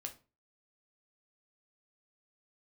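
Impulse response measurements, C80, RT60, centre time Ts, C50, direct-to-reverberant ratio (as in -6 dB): 20.5 dB, 0.35 s, 9 ms, 14.0 dB, 3.5 dB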